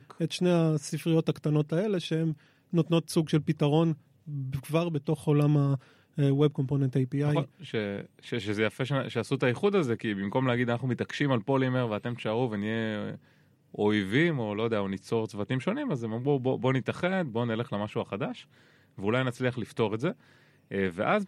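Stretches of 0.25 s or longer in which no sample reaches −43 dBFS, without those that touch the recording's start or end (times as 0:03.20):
0:02.34–0:02.73
0:03.95–0:04.27
0:05.78–0:06.18
0:13.17–0:13.74
0:18.42–0:18.98
0:20.13–0:20.71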